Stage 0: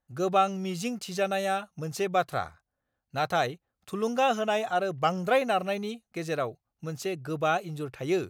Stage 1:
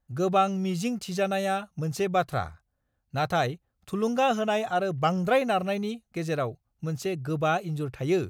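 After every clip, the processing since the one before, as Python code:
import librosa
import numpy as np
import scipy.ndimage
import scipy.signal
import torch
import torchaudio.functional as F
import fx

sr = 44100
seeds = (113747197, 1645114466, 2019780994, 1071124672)

y = fx.low_shelf(x, sr, hz=160.0, db=12.0)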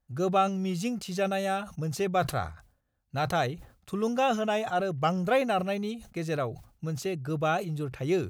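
y = fx.sustainer(x, sr, db_per_s=120.0)
y = y * librosa.db_to_amplitude(-2.0)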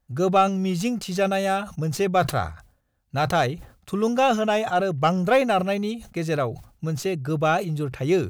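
y = fx.tracing_dist(x, sr, depth_ms=0.027)
y = y * librosa.db_to_amplitude(6.0)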